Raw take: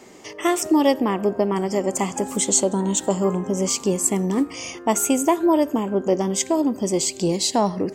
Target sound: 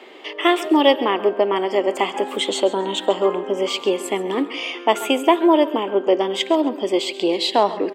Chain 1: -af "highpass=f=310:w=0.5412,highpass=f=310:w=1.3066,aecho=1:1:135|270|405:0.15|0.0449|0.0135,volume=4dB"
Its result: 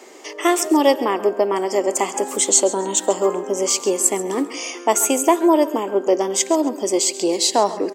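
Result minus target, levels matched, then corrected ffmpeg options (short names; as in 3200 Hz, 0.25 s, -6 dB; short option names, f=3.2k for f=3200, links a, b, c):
8000 Hz band +16.5 dB
-af "highpass=f=310:w=0.5412,highpass=f=310:w=1.3066,highshelf=f=4.6k:t=q:w=3:g=-12,aecho=1:1:135|270|405:0.15|0.0449|0.0135,volume=4dB"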